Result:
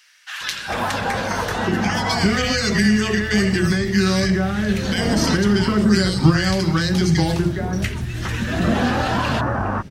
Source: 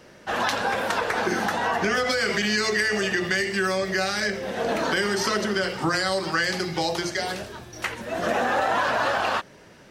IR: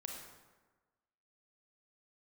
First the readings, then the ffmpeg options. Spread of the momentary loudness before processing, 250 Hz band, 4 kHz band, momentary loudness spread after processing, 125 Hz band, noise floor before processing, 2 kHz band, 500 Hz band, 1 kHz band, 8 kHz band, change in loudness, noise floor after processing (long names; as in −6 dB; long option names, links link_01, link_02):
6 LU, +12.5 dB, +3.5 dB, 8 LU, +17.0 dB, −49 dBFS, +0.5 dB, +2.0 dB, +0.5 dB, +4.0 dB, +5.0 dB, −31 dBFS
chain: -filter_complex "[0:a]acrossover=split=1600[link_01][link_02];[link_01]adelay=410[link_03];[link_03][link_02]amix=inputs=2:normalize=0,asubboost=boost=9.5:cutoff=180,volume=4dB"